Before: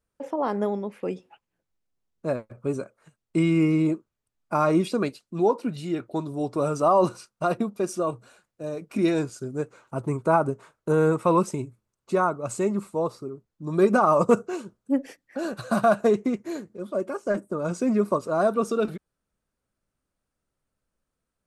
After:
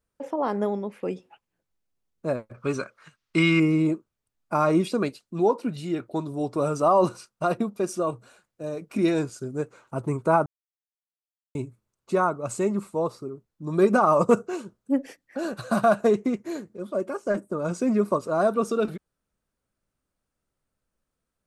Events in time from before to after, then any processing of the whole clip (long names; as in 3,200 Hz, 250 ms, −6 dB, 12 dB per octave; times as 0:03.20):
0:02.54–0:03.60: flat-topped bell 2,500 Hz +11.5 dB 2.8 octaves
0:10.46–0:11.55: silence